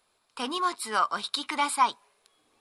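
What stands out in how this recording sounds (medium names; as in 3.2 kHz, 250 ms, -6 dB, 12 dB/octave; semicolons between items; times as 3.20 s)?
noise floor -72 dBFS; spectral tilt -0.5 dB/octave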